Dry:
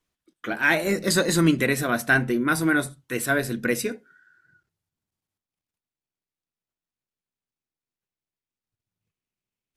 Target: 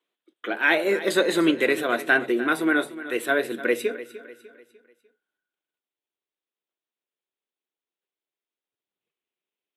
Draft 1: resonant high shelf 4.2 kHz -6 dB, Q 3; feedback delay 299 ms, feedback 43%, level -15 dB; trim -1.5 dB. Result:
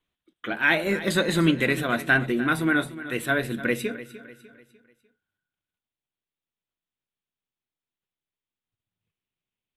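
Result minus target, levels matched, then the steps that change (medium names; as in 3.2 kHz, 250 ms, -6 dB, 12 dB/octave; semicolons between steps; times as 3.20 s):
500 Hz band -3.5 dB
add first: resonant high-pass 390 Hz, resonance Q 1.8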